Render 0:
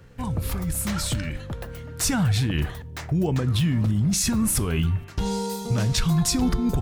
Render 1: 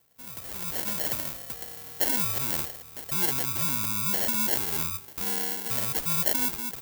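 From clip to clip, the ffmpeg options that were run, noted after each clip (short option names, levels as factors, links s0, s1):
-af "acrusher=samples=36:mix=1:aa=0.000001,dynaudnorm=f=190:g=5:m=3.98,aemphasis=mode=production:type=riaa,volume=0.133"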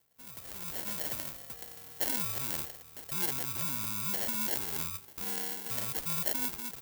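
-af "acrusher=bits=2:mode=log:mix=0:aa=0.000001,volume=0.447"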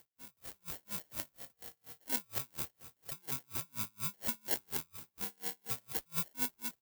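-af "acompressor=mode=upward:threshold=0.00158:ratio=2.5,aecho=1:1:226|452|678|904|1130:0.133|0.0707|0.0375|0.0199|0.0105,aeval=exprs='val(0)*pow(10,-38*(0.5-0.5*cos(2*PI*4.2*n/s))/20)':c=same,volume=1.12"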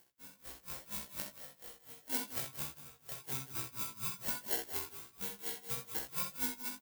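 -filter_complex "[0:a]flanger=delay=17.5:depth=4.4:speed=2.2,asplit=2[s0][s1];[s1]adelay=15,volume=0.631[s2];[s0][s2]amix=inputs=2:normalize=0,asplit=2[s3][s4];[s4]aecho=0:1:48|63|179|187:0.355|0.316|0.178|0.1[s5];[s3][s5]amix=inputs=2:normalize=0,volume=1.12"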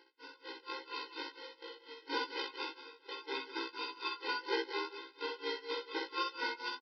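-af "aeval=exprs='(tanh(20*val(0)+0.5)-tanh(0.5))/20':c=same,aresample=11025,aresample=44100,afftfilt=real='re*eq(mod(floor(b*sr/1024/270),2),1)':imag='im*eq(mod(floor(b*sr/1024/270),2),1)':win_size=1024:overlap=0.75,volume=5.01"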